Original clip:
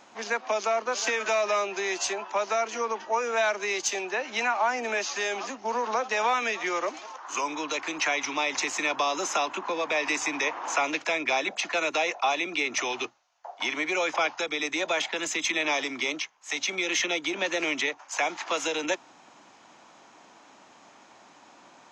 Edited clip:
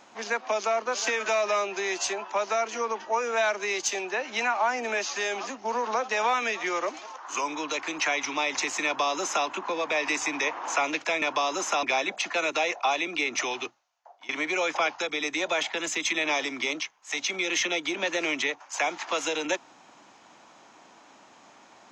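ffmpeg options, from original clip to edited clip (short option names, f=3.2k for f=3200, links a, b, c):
-filter_complex "[0:a]asplit=4[a][b][c][d];[a]atrim=end=11.222[e];[b]atrim=start=8.848:end=9.462[f];[c]atrim=start=11.218:end=13.68,asetpts=PTS-STARTPTS,afade=t=out:st=1.612:d=0.85:silence=0.0841395[g];[d]atrim=start=13.68,asetpts=PTS-STARTPTS,afade=t=in:d=0.004:c=hsin:silence=0.0841395[h];[e][f]acrossfade=d=0.004:c1=hsin:c2=hsin[i];[g][h]concat=n=2:v=0:a=1[j];[i][j]acrossfade=d=0.004:c1=hsin:c2=hsin"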